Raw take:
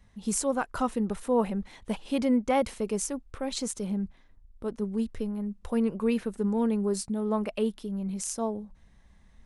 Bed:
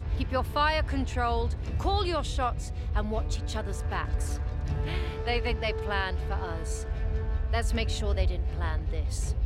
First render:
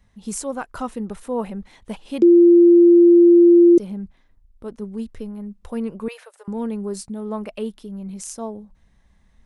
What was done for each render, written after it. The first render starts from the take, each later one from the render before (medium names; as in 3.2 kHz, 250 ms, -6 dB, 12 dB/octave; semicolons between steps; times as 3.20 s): 2.22–3.78 s: bleep 345 Hz -7 dBFS; 6.08–6.48 s: steep high-pass 530 Hz 48 dB/octave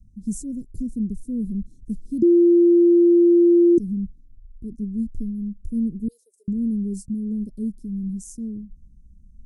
inverse Chebyshev band-stop 760–2600 Hz, stop band 60 dB; tilt EQ -2 dB/octave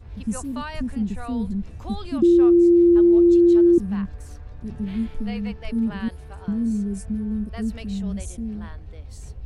add bed -8.5 dB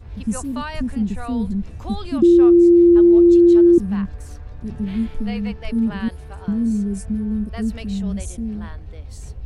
trim +3.5 dB